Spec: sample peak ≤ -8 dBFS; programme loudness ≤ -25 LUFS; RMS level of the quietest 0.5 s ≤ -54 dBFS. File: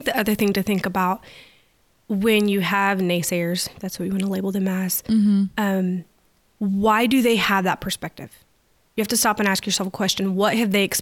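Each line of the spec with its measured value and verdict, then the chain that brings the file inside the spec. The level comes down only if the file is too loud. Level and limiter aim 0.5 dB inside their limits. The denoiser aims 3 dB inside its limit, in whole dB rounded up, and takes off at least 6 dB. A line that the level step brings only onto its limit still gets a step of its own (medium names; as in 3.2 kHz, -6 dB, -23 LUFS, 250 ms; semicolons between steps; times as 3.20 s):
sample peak -7.5 dBFS: fail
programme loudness -21.0 LUFS: fail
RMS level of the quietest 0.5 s -62 dBFS: pass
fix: trim -4.5 dB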